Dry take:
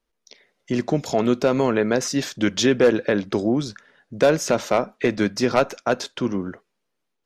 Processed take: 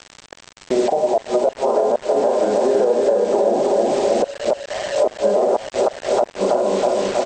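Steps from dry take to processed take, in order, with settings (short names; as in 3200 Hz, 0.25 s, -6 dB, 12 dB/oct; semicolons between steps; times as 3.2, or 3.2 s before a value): vocal rider 0.5 s; Butterworth band-pass 710 Hz, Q 1.8; tilt -3.5 dB/oct; comb 5 ms, depth 35%; feedback echo 0.32 s, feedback 56%, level -3.5 dB; Schroeder reverb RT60 0.43 s, combs from 31 ms, DRR 0 dB; flipped gate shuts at -9 dBFS, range -27 dB; bit-crush 7-bit; crackle 130/s -37 dBFS; compressor 10:1, threshold -28 dBFS, peak gain reduction 13.5 dB; maximiser +22.5 dB; gain -6.5 dB; MP2 64 kbps 32000 Hz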